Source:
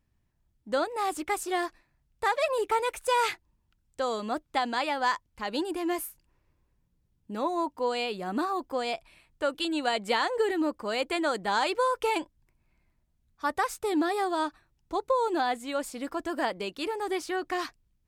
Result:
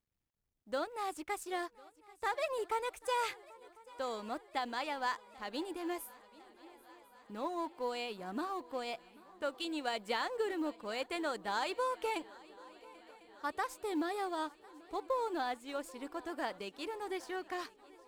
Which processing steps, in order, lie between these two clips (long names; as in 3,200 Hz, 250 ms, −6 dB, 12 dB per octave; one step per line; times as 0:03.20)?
mu-law and A-law mismatch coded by A
feedback echo with a long and a short gap by turns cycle 1,049 ms, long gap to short 3 to 1, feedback 65%, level −22.5 dB
level −8 dB